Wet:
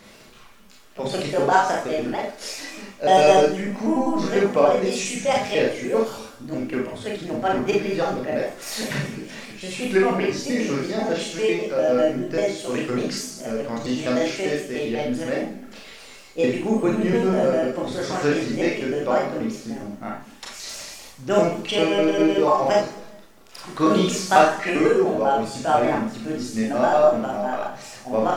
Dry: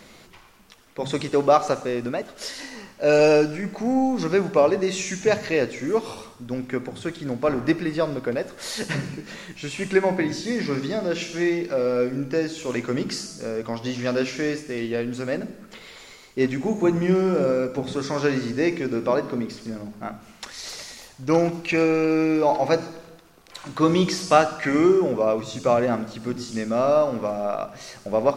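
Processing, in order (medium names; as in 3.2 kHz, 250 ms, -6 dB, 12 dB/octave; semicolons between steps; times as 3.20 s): pitch shift switched off and on +4 st, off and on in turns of 99 ms; Schroeder reverb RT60 0.33 s, combs from 28 ms, DRR -1.5 dB; trim -2 dB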